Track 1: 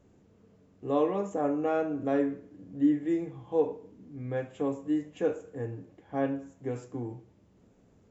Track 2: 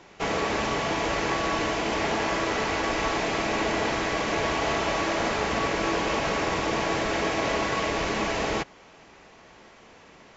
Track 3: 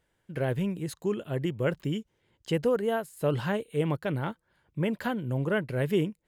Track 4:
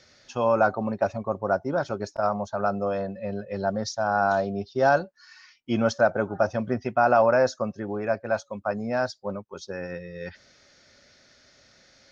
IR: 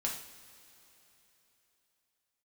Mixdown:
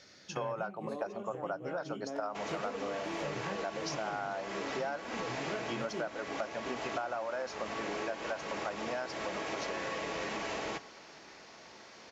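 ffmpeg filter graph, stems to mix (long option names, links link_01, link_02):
-filter_complex "[0:a]acompressor=threshold=-32dB:ratio=6,volume=-3dB,asplit=2[link_01][link_02];[1:a]acompressor=threshold=-28dB:ratio=6,adelay=2150,volume=-4.5dB,asplit=2[link_03][link_04];[link_04]volume=-13dB[link_05];[2:a]flanger=delay=19:depth=7.3:speed=0.46,adynamicsmooth=sensitivity=7:basefreq=5700,volume=-2dB,asplit=2[link_06][link_07];[link_07]volume=-13.5dB[link_08];[3:a]highpass=frequency=540:poles=1,volume=-0.5dB[link_09];[link_02]apad=whole_len=276616[link_10];[link_06][link_10]sidechaincompress=threshold=-41dB:ratio=8:attack=16:release=626[link_11];[4:a]atrim=start_sample=2205[link_12];[link_05][link_08]amix=inputs=2:normalize=0[link_13];[link_13][link_12]afir=irnorm=-1:irlink=0[link_14];[link_01][link_03][link_11][link_09][link_14]amix=inputs=5:normalize=0,highpass=frequency=180:poles=1,acompressor=threshold=-33dB:ratio=12"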